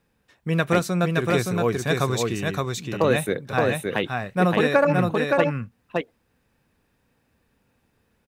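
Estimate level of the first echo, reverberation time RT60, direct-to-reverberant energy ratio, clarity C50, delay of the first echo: −3.0 dB, no reverb audible, no reverb audible, no reverb audible, 569 ms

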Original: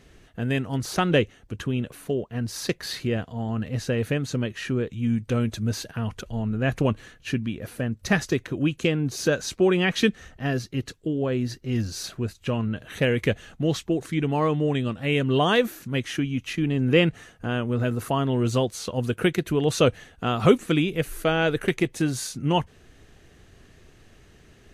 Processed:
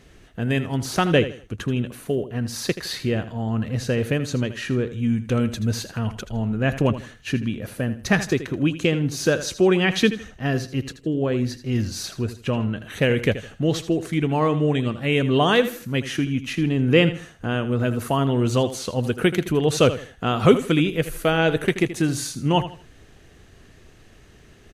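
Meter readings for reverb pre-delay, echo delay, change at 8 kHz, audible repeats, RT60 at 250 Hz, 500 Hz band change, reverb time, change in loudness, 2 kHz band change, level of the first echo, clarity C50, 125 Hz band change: no reverb audible, 80 ms, +2.5 dB, 3, no reverb audible, +2.5 dB, no reverb audible, +2.5 dB, +2.5 dB, −13.0 dB, no reverb audible, +2.5 dB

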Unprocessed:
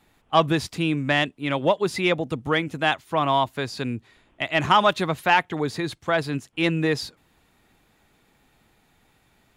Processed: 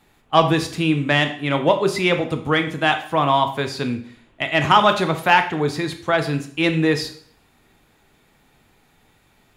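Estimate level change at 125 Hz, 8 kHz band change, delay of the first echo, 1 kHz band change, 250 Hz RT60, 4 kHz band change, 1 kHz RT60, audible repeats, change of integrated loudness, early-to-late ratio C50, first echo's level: +4.5 dB, +4.0 dB, no echo audible, +4.0 dB, 0.55 s, +4.0 dB, 0.55 s, no echo audible, +4.0 dB, 11.0 dB, no echo audible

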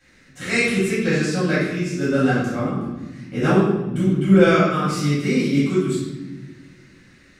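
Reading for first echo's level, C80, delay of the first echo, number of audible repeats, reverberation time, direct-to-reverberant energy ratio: no echo audible, 3.0 dB, no echo audible, no echo audible, 1.2 s, −12.0 dB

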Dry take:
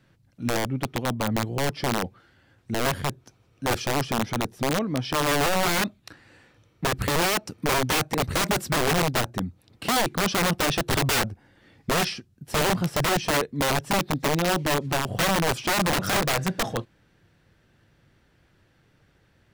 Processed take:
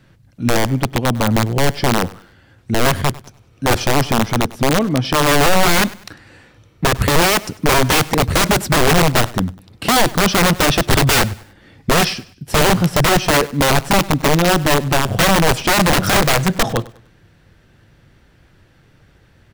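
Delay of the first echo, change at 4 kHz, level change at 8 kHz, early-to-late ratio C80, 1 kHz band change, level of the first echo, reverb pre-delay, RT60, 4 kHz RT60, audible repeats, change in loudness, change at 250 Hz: 99 ms, +9.0 dB, +9.0 dB, no reverb audible, +9.0 dB, −20.0 dB, no reverb audible, no reverb audible, no reverb audible, 2, +9.5 dB, +10.0 dB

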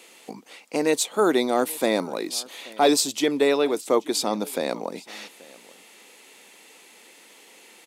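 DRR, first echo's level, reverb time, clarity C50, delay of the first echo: no reverb audible, −22.5 dB, no reverb audible, no reverb audible, 832 ms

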